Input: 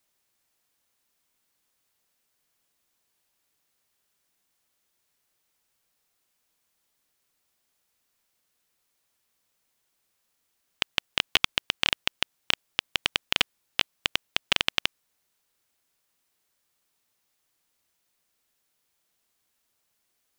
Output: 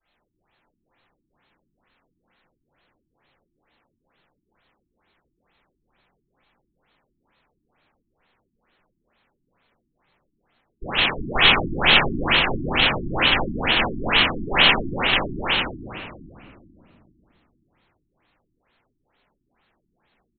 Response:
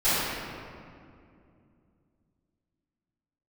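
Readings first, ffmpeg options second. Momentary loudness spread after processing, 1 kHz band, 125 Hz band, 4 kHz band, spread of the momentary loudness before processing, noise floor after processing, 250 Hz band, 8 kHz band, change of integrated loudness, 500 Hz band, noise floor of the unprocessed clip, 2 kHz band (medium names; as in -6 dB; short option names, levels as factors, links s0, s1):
7 LU, +14.5 dB, +18.5 dB, +7.5 dB, 5 LU, -75 dBFS, +18.5 dB, under -35 dB, +8.5 dB, +15.5 dB, -76 dBFS, +10.5 dB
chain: -filter_complex "[0:a]aecho=1:1:608:0.668[s0];[1:a]atrim=start_sample=2205[s1];[s0][s1]afir=irnorm=-1:irlink=0,afftfilt=real='re*lt(b*sr/1024,350*pow(4400/350,0.5+0.5*sin(2*PI*2.2*pts/sr)))':imag='im*lt(b*sr/1024,350*pow(4400/350,0.5+0.5*sin(2*PI*2.2*pts/sr)))':win_size=1024:overlap=0.75,volume=0.794"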